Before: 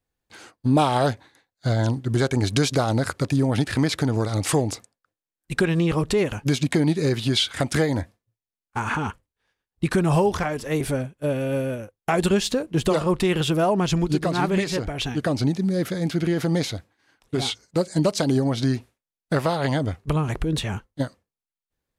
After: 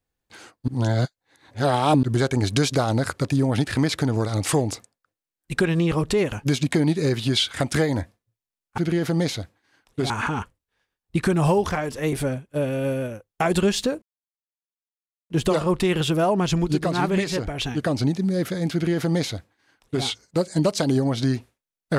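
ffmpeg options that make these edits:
ffmpeg -i in.wav -filter_complex "[0:a]asplit=6[link_01][link_02][link_03][link_04][link_05][link_06];[link_01]atrim=end=0.682[link_07];[link_02]atrim=start=0.678:end=2.032,asetpts=PTS-STARTPTS,areverse[link_08];[link_03]atrim=start=2.028:end=8.782[link_09];[link_04]atrim=start=16.128:end=17.452[link_10];[link_05]atrim=start=8.778:end=12.7,asetpts=PTS-STARTPTS,afade=type=out:start_time=3.918:duration=0.004:curve=hsin,apad=pad_dur=1.28[link_11];[link_06]atrim=start=12.7,asetpts=PTS-STARTPTS,afade=type=in:duration=0.004:curve=hsin[link_12];[link_07][link_08]acrossfade=duration=0.004:curve1=hsin:curve2=hsin[link_13];[link_13][link_09]acrossfade=duration=0.004:curve1=hsin:curve2=hsin[link_14];[link_14][link_10]acrossfade=duration=0.004:curve1=hsin:curve2=hsin[link_15];[link_11][link_12]concat=n=2:v=0:a=1[link_16];[link_15][link_16]acrossfade=duration=0.004:curve1=hsin:curve2=hsin" out.wav

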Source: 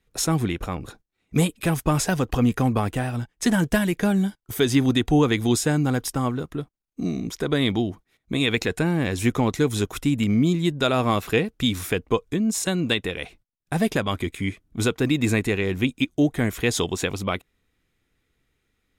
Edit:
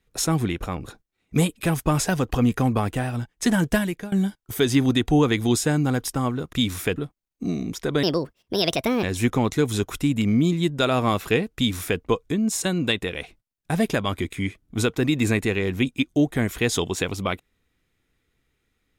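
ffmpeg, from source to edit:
ffmpeg -i in.wav -filter_complex "[0:a]asplit=6[link_01][link_02][link_03][link_04][link_05][link_06];[link_01]atrim=end=4.12,asetpts=PTS-STARTPTS,afade=type=out:start_time=3.75:duration=0.37:silence=0.0841395[link_07];[link_02]atrim=start=4.12:end=6.532,asetpts=PTS-STARTPTS,afade=type=in:duration=0.004:curve=hsin:silence=0.0841395[link_08];[link_03]atrim=start=11.578:end=12.012[link_09];[link_04]atrim=start=6.528:end=7.604[link_10];[link_05]atrim=start=7.6:end=9.05,asetpts=PTS-STARTPTS,asetrate=63945,aresample=44100[link_11];[link_06]atrim=start=9.046[link_12];[link_07][link_08]concat=n=2:v=0:a=1[link_13];[link_13][link_09]acrossfade=duration=0.004:curve1=hsin:curve2=hsin[link_14];[link_14][link_10]acrossfade=duration=0.004:curve1=hsin:curve2=hsin[link_15];[link_15][link_11]acrossfade=duration=0.004:curve1=hsin:curve2=hsin[link_16];[link_16][link_12]acrossfade=duration=0.004:curve1=hsin:curve2=hsin" out.wav

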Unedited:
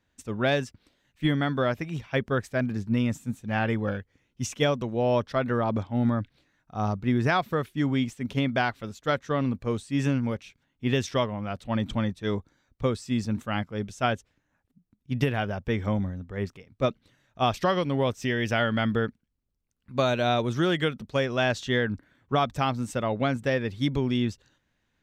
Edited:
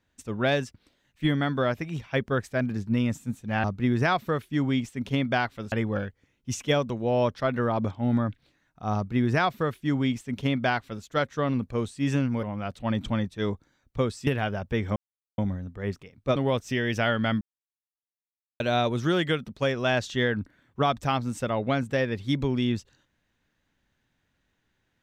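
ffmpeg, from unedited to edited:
ffmpeg -i in.wav -filter_complex "[0:a]asplit=9[link_01][link_02][link_03][link_04][link_05][link_06][link_07][link_08][link_09];[link_01]atrim=end=3.642[link_10];[link_02]atrim=start=6.878:end=8.962[link_11];[link_03]atrim=start=3.638:end=10.352[link_12];[link_04]atrim=start=11.278:end=13.122[link_13];[link_05]atrim=start=15.228:end=15.92,asetpts=PTS-STARTPTS,afade=type=out:start_time=0.688:duration=0.004:curve=hsin,apad=pad_dur=0.42[link_14];[link_06]atrim=start=15.92:end=16.902,asetpts=PTS-STARTPTS,afade=type=in:duration=0.004:curve=hsin[link_15];[link_07]atrim=start=17.888:end=18.94,asetpts=PTS-STARTPTS,afade=type=out:start_time=1.048:duration=0.004:curve=hsin[link_16];[link_08]atrim=start=18.94:end=20.13,asetpts=PTS-STARTPTS,volume=0[link_17];[link_09]atrim=start=20.13,asetpts=PTS-STARTPTS,afade=type=in:duration=0.004:curve=hsin[link_18];[link_10][link_11]acrossfade=duration=0.004:curve1=hsin:curve2=hsin[link_19];[link_19][link_12]acrossfade=duration=0.004:curve1=hsin:curve2=hsin[link_20];[link_20][link_13]acrossfade=duration=0.004:curve1=hsin:curve2=hsin[link_21];[link_14][link_15]concat=n=2:v=0:a=1[link_22];[link_21][link_22]acrossfade=duration=0.004:curve1=hsin:curve2=hsin[link_23];[link_16][link_17][link_18]concat=n=3:v=0:a=1[link_24];[link_23][link_24]acrossfade=duration=0.004:curve1=hsin:curve2=hsin" out.wav

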